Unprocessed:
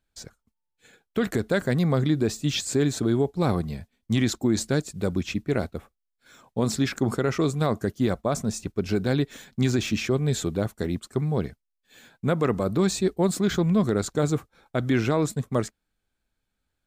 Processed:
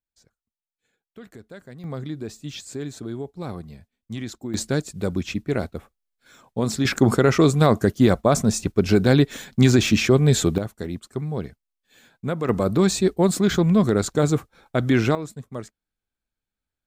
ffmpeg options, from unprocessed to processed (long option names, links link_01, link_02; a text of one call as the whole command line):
ffmpeg -i in.wav -af "asetnsamples=nb_out_samples=441:pad=0,asendcmd='1.84 volume volume -9dB;4.54 volume volume 1dB;6.85 volume volume 7.5dB;10.58 volume volume -2.5dB;12.49 volume volume 4dB;15.15 volume volume -8.5dB',volume=-18dB" out.wav